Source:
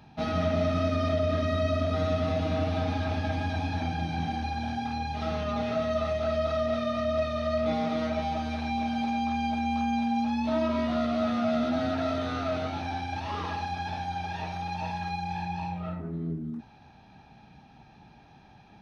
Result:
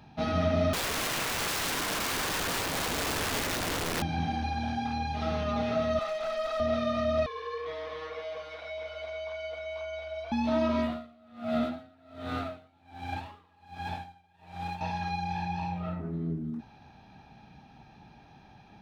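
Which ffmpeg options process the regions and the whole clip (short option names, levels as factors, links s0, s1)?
-filter_complex "[0:a]asettb=1/sr,asplit=3[s0][s1][s2];[s0]atrim=end=0.734[s3];[s1]atrim=start=0.73:end=4.02,asetpts=PTS-STARTPTS,afade=t=in:d=0.004:c=qsin,afade=t=out:st=3.286:d=0.004:c=qsin,bandreject=f=800:w=5.1,aecho=1:1:1.1:0.81,atrim=end_sample=145089,aeval=exprs='(mod(21.1*val(0)+1,2)-1)/21.1':c=same[s4];[s2]atrim=start=4.016[s5];[s3][s4]acrossfade=d=0.004:c1=hsin:c2=qsin[s6];[s6][s5]acrossfade=d=0.004:c1=qsin:c2=hsin,asettb=1/sr,asplit=3[s7][s8][s9];[s7]atrim=end=5.994[s10];[s8]atrim=start=5.99:end=6.6,asetpts=PTS-STARTPTS,afade=t=in:d=0.004:c=qsin,afade=t=out:st=0.606:d=0.004:c=qsin,highpass=630,aeval=exprs='clip(val(0),-1,0.0299)':c=same[s11];[s9]atrim=start=6.596[s12];[s10][s11]acrossfade=d=0.004:c1=hsin:c2=qsin[s13];[s13][s12]acrossfade=d=0.004:c1=qsin:c2=hsin,asettb=1/sr,asplit=3[s14][s15][s16];[s14]atrim=end=7.264[s17];[s15]atrim=start=7.26:end=10.32,asetpts=PTS-STARTPTS,afade=t=in:d=0.004:c=qsin,afade=t=out:st=3.056:d=0.004:c=qsin,highpass=990,highshelf=f=3700:g=-12,afreqshift=-160[s18];[s16]atrim=start=10.316[s19];[s17][s18]acrossfade=d=0.004:c1=hsin:c2=qsin[s20];[s20][s19]acrossfade=d=0.004:c1=qsin:c2=hsin,asettb=1/sr,asplit=3[s21][s22][s23];[s21]atrim=end=10.824[s24];[s22]atrim=start=10.82:end=14.81,asetpts=PTS-STARTPTS,afade=t=in:d=0.004:c=qsin,afade=t=out:st=3.986:d=0.004:c=qsin,lowpass=f=4400:w=0.5412,lowpass=f=4400:w=1.3066,aeval=exprs='sgn(val(0))*max(abs(val(0))-0.00299,0)':c=same,aeval=exprs='val(0)*pow(10,-31*(0.5-0.5*cos(2*PI*1.3*n/s))/20)':c=same[s25];[s23]atrim=start=14.806[s26];[s24][s25]acrossfade=d=0.004:c1=hsin:c2=qsin[s27];[s27][s26]acrossfade=d=0.004:c1=qsin:c2=hsin"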